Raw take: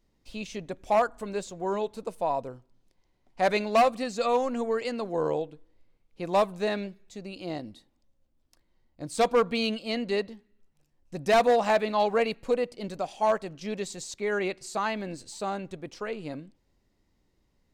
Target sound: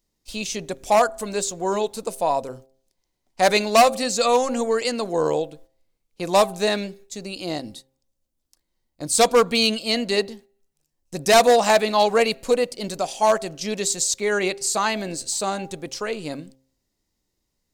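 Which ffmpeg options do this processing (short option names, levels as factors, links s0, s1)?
-af "agate=range=0.251:threshold=0.00282:ratio=16:detection=peak,bass=f=250:g=-2,treble=f=4000:g=13,bandreject=f=132.5:t=h:w=4,bandreject=f=265:t=h:w=4,bandreject=f=397.5:t=h:w=4,bandreject=f=530:t=h:w=4,bandreject=f=662.5:t=h:w=4,bandreject=f=795:t=h:w=4,volume=2.11"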